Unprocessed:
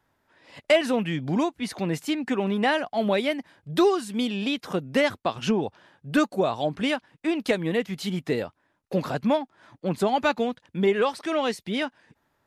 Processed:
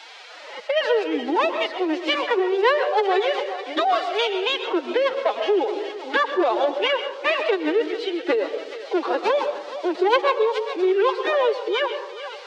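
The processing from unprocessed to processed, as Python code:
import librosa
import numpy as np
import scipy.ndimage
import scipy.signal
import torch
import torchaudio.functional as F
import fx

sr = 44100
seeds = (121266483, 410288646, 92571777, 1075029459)

p1 = fx.peak_eq(x, sr, hz=500.0, db=9.0, octaves=2.5)
p2 = fx.dmg_noise_colour(p1, sr, seeds[0], colour='blue', level_db=-39.0)
p3 = fx.over_compress(p2, sr, threshold_db=-13.0, ratio=-1.0)
p4 = np.clip(10.0 ** (10.5 / 20.0) * p3, -1.0, 1.0) / 10.0 ** (10.5 / 20.0)
p5 = fx.cabinet(p4, sr, low_hz=230.0, low_slope=24, high_hz=4200.0, hz=(320.0, 580.0, 830.0), db=(-4, -7, 4))
p6 = p5 + fx.echo_thinned(p5, sr, ms=421, feedback_pct=66, hz=950.0, wet_db=-12.0, dry=0)
p7 = fx.pitch_keep_formants(p6, sr, semitones=11.0)
p8 = fx.rev_freeverb(p7, sr, rt60_s=0.62, hf_ratio=0.3, predelay_ms=85, drr_db=9.0)
y = fx.band_squash(p8, sr, depth_pct=40)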